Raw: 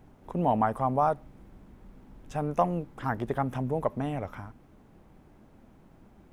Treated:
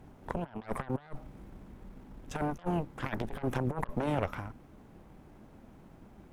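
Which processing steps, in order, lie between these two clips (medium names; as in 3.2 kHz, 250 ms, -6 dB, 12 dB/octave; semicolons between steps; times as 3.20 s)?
Chebyshev shaper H 5 -34 dB, 6 -7 dB, 7 -28 dB, 8 -25 dB, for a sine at -10.5 dBFS; compressor with a negative ratio -32 dBFS, ratio -0.5; trim -2 dB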